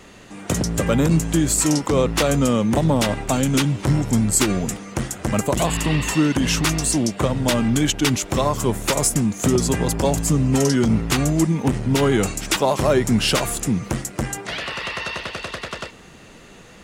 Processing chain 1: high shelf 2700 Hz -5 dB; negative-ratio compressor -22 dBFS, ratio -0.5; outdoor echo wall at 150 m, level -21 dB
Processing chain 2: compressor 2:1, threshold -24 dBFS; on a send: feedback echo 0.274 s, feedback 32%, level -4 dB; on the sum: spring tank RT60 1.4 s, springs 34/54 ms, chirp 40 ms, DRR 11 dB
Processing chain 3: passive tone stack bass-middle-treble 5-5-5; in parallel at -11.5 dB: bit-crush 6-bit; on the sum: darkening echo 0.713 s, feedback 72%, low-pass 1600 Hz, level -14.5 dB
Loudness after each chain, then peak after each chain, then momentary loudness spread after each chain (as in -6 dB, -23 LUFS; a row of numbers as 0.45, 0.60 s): -24.0, -23.0, -29.5 LUFS; -6.5, -8.0, -10.5 dBFS; 7, 6, 10 LU